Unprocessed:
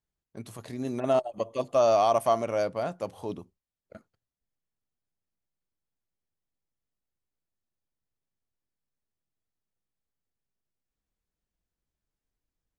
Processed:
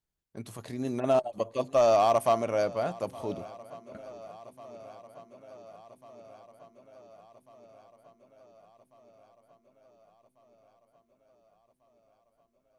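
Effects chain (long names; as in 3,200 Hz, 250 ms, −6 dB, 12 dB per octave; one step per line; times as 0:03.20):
hard clipping −16 dBFS, distortion −24 dB
feedback echo with a long and a short gap by turns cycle 1,445 ms, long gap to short 1.5 to 1, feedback 62%, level −21 dB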